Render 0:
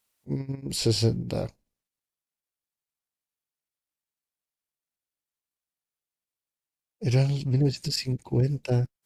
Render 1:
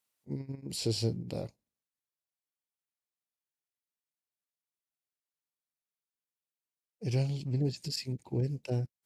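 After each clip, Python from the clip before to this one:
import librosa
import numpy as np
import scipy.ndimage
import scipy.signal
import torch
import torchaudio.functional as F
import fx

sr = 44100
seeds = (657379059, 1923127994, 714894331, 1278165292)

y = scipy.signal.sosfilt(scipy.signal.butter(2, 82.0, 'highpass', fs=sr, output='sos'), x)
y = fx.dynamic_eq(y, sr, hz=1400.0, q=1.4, threshold_db=-50.0, ratio=4.0, max_db=-6)
y = y * librosa.db_to_amplitude(-7.0)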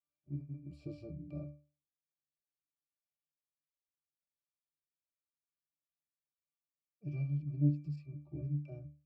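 y = fx.octave_resonator(x, sr, note='D', decay_s=0.34)
y = y * librosa.db_to_amplitude(6.5)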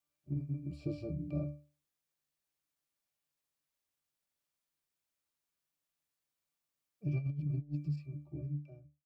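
y = fx.fade_out_tail(x, sr, length_s=1.5)
y = fx.over_compress(y, sr, threshold_db=-38.0, ratio=-0.5)
y = y * librosa.db_to_amplitude(4.0)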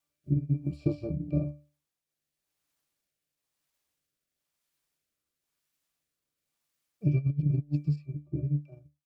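y = fx.transient(x, sr, attack_db=5, sustain_db=-6)
y = fx.rotary(y, sr, hz=1.0)
y = y * librosa.db_to_amplitude(8.0)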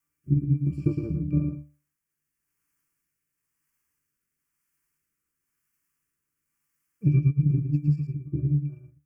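y = fx.fixed_phaser(x, sr, hz=1600.0, stages=4)
y = y + 10.0 ** (-6.5 / 20.0) * np.pad(y, (int(112 * sr / 1000.0), 0))[:len(y)]
y = y * librosa.db_to_amplitude(5.0)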